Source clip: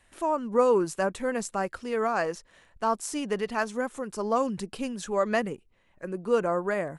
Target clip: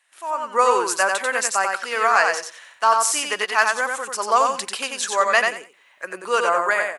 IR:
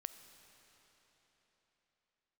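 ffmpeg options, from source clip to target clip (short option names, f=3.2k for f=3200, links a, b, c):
-filter_complex "[0:a]highpass=1.1k,dynaudnorm=f=250:g=3:m=15dB,asplit=2[a][b];[b]aecho=0:1:91|182|273:0.631|0.12|0.0228[c];[a][c]amix=inputs=2:normalize=0"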